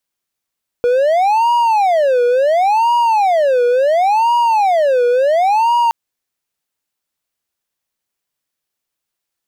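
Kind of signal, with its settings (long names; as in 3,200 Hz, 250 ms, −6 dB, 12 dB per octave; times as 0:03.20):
siren wail 483–954 Hz 0.71 per second triangle −8 dBFS 5.07 s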